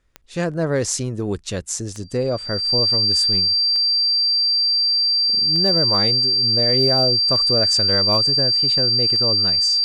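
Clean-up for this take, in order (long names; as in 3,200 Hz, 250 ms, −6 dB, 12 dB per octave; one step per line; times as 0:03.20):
clipped peaks rebuilt −8.5 dBFS
click removal
notch filter 4,700 Hz, Q 30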